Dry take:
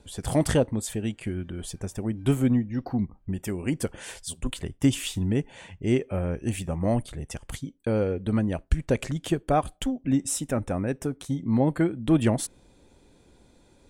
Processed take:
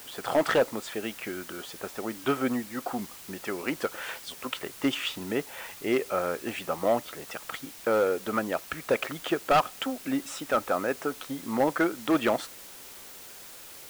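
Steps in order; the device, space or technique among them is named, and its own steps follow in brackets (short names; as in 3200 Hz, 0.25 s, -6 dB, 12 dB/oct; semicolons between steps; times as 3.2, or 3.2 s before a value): drive-through speaker (BPF 490–3100 Hz; bell 1300 Hz +10 dB 0.28 oct; hard clip -22 dBFS, distortion -12 dB; white noise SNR 16 dB); gain +5.5 dB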